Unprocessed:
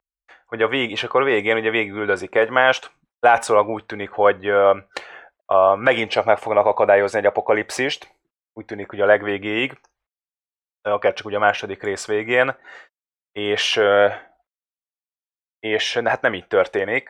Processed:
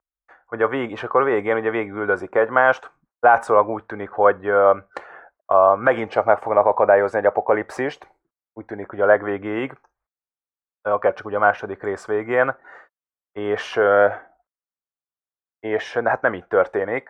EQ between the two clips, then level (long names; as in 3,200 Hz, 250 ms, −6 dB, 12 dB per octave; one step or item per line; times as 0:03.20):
high shelf with overshoot 2,000 Hz −12 dB, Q 1.5
−1.0 dB